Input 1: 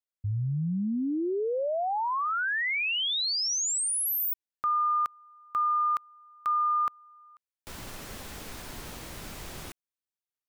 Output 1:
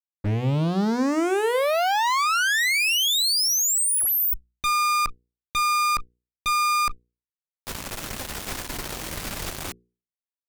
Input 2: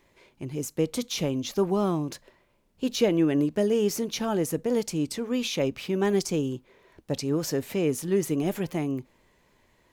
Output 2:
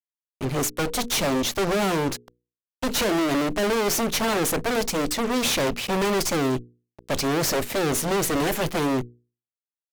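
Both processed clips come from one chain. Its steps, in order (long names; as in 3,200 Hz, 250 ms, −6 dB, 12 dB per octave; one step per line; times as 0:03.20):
harmonic generator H 2 −19 dB, 4 −26 dB, 6 −40 dB, 8 −12 dB, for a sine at −10.5 dBFS
fuzz pedal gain 37 dB, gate −43 dBFS
mains-hum notches 60/120/180/240/300/360/420/480 Hz
level −7.5 dB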